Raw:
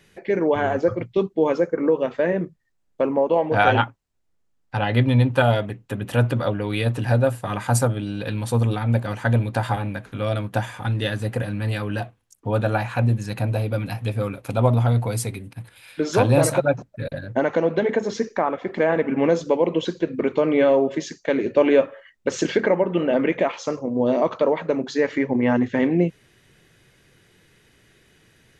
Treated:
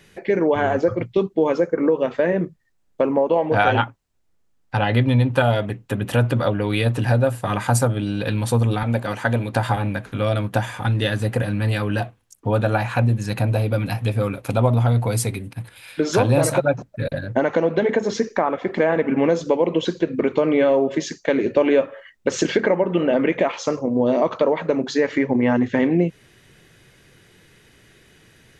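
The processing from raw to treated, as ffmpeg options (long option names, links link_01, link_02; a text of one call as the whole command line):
ffmpeg -i in.wav -filter_complex "[0:a]asettb=1/sr,asplit=3[link_01][link_02][link_03];[link_01]atrim=end=8.834[link_04];[link_02]atrim=start=8.83:end=9.54,asetpts=PTS-STARTPTS,afade=type=in:duration=0.004:curve=qsin,afade=type=out:start_time=0.706:duration=0.004:curve=qsin,highpass=frequency=220:poles=1[link_05];[link_03]atrim=start=9.536[link_06];[link_04][link_05]acrossfade=duration=0.004:curve1=hsin:curve2=qsin[link_07];[link_07][link_06]acrossfade=duration=0.004:curve1=qsin:curve2=hsin,acompressor=threshold=-21dB:ratio=2,volume=4.5dB" out.wav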